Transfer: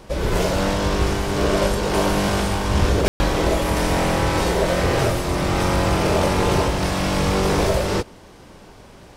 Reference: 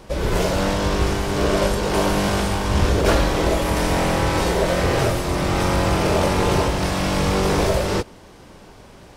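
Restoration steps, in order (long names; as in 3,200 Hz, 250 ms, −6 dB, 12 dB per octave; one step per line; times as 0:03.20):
ambience match 0:03.08–0:03.20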